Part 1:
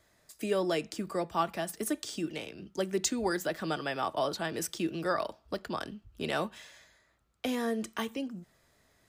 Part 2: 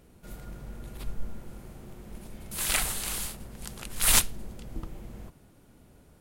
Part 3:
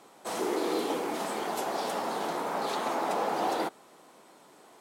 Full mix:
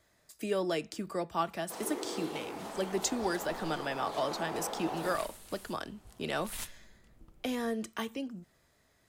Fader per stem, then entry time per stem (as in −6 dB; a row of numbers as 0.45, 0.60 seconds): −2.0, −20.0, −9.5 decibels; 0.00, 2.45, 1.45 seconds